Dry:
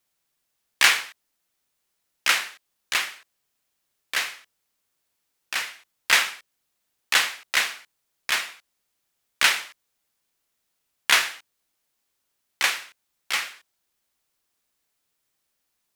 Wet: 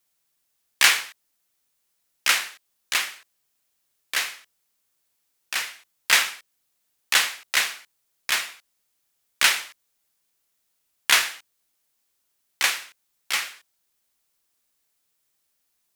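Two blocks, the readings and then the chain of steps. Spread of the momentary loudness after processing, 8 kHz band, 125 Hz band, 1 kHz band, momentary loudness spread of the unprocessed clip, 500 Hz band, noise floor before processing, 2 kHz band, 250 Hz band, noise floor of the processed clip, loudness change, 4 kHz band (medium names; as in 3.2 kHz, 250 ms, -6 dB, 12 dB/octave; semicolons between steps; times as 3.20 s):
17 LU, +3.0 dB, no reading, -0.5 dB, 17 LU, -1.0 dB, -77 dBFS, -0.5 dB, -1.0 dB, -74 dBFS, +0.5 dB, +1.0 dB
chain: treble shelf 5 kHz +5.5 dB; trim -1 dB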